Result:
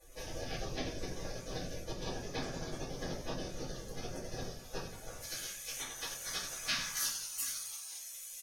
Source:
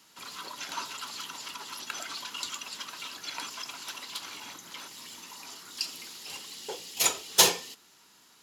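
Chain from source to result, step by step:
dynamic equaliser 2,100 Hz, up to +8 dB, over −54 dBFS, Q 2.2
echo with shifted repeats 87 ms, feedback 49%, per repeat −110 Hz, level −7 dB
downward compressor 12 to 1, threshold −48 dBFS, peak gain reduction 34 dB
Savitzky-Golay smoothing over 15 samples
gate on every frequency bin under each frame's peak −20 dB weak
tilt shelving filter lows +6.5 dB, about 1,300 Hz, from 0:05.20 lows −4.5 dB, from 0:06.93 lows −10 dB
rectangular room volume 35 cubic metres, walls mixed, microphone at 2 metres
level +16 dB

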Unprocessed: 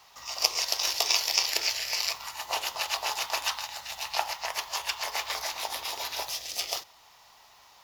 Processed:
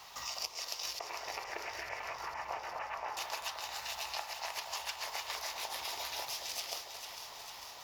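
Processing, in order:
0:00.99–0:03.17: inverse Chebyshev low-pass filter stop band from 4,900 Hz, stop band 50 dB
downward compressor 5 to 1, threshold −43 dBFS, peak gain reduction 22.5 dB
delay that swaps between a low-pass and a high-pass 225 ms, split 980 Hz, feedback 84%, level −7 dB
level +4 dB

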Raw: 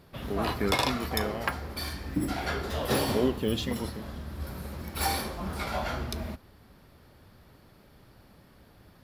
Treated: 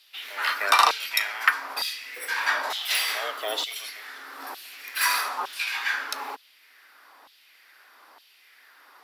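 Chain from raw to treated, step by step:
frequency shifter +200 Hz
auto-filter high-pass saw down 1.1 Hz 890–3,400 Hz
level +5.5 dB

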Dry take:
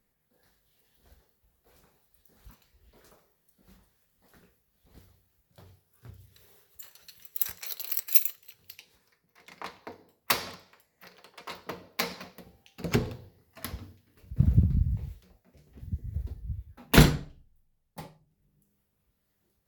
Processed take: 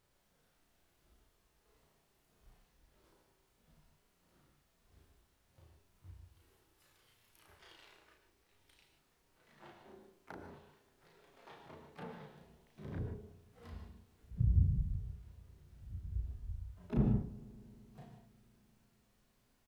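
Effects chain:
pitch shifter swept by a sawtooth −6.5 semitones, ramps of 325 ms
treble cut that deepens with the level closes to 440 Hz, closed at −27 dBFS
high-shelf EQ 3,400 Hz −8.5 dB
background noise pink −68 dBFS
pitch-shifted copies added +7 semitones −14 dB
harmonic and percussive parts rebalanced percussive −12 dB
double-tracking delay 34 ms −2.5 dB
bucket-brigade delay 115 ms, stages 1,024, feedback 82%, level −23 dB
reverb whose tail is shaped and stops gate 170 ms rising, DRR 6.5 dB
level −6.5 dB

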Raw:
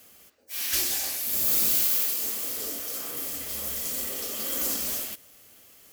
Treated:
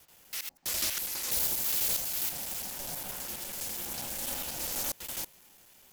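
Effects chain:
slices reordered back to front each 82 ms, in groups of 4
ring modulation 280 Hz
highs frequency-modulated by the lows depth 0.27 ms

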